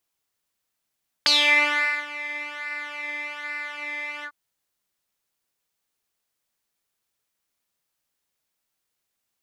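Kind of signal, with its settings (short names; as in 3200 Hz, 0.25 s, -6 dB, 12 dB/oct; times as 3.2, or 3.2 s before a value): synth patch with pulse-width modulation D4, sub -27 dB, filter bandpass, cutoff 1200 Hz, Q 5.9, filter envelope 2 oct, attack 1.7 ms, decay 0.79 s, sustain -18 dB, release 0.07 s, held 2.98 s, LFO 1.2 Hz, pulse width 15%, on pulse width 6%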